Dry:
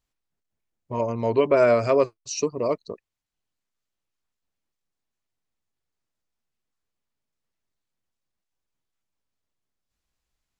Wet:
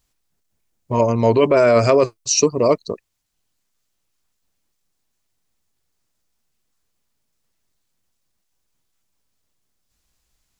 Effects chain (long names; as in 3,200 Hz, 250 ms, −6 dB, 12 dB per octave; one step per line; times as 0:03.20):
in parallel at +2.5 dB: compressor whose output falls as the input rises −20 dBFS, ratio −0.5
on the sum: bass and treble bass +2 dB, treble +6 dB